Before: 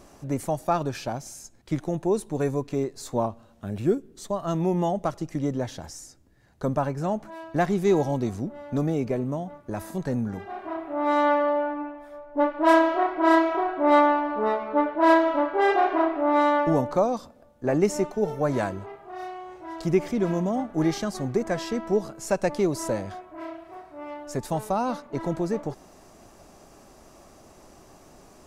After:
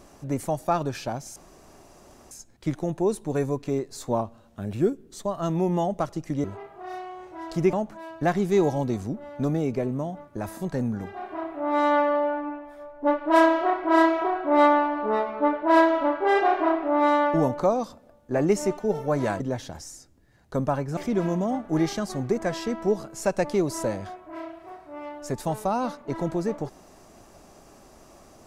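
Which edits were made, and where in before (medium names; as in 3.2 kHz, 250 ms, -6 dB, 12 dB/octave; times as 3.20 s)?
1.36 s: insert room tone 0.95 s
5.49–7.06 s: swap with 18.73–20.02 s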